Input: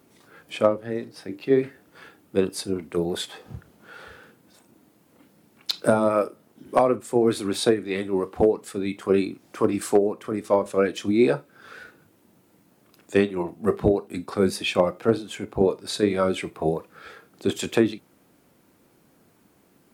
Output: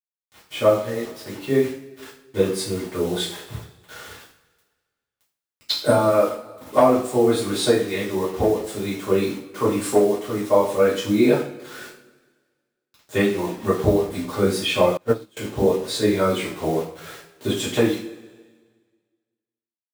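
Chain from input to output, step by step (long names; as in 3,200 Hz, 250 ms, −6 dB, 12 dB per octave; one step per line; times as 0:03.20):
bit reduction 7 bits
coupled-rooms reverb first 0.4 s, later 1.6 s, from −19 dB, DRR −9 dB
0:14.97–0:15.37: expander for the loud parts 2.5 to 1, over −24 dBFS
level −6 dB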